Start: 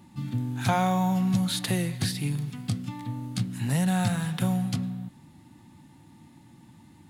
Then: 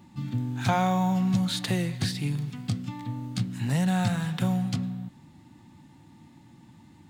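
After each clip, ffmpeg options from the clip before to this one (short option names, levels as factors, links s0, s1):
-af "equalizer=f=11000:w=2.9:g=-14.5"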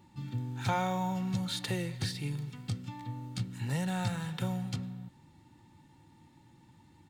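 -af "aecho=1:1:2.2:0.42,volume=0.501"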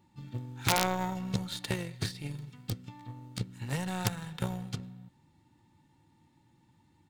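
-af "aeval=exprs='(mod(10.6*val(0)+1,2)-1)/10.6':c=same,aeval=exprs='0.0944*(cos(1*acos(clip(val(0)/0.0944,-1,1)))-cos(1*PI/2))+0.0237*(cos(3*acos(clip(val(0)/0.0944,-1,1)))-cos(3*PI/2))+0.00075*(cos(6*acos(clip(val(0)/0.0944,-1,1)))-cos(6*PI/2))':c=same,volume=2"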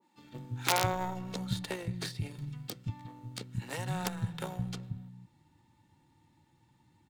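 -filter_complex "[0:a]acrossover=split=240[s0][s1];[s0]adelay=170[s2];[s2][s1]amix=inputs=2:normalize=0,adynamicequalizer=threshold=0.00355:dfrequency=1500:dqfactor=0.7:tfrequency=1500:tqfactor=0.7:attack=5:release=100:ratio=0.375:range=3.5:mode=cutabove:tftype=highshelf"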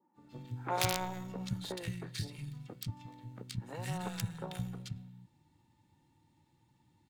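-filter_complex "[0:a]acrossover=split=1500[s0][s1];[s1]adelay=130[s2];[s0][s2]amix=inputs=2:normalize=0,volume=0.708"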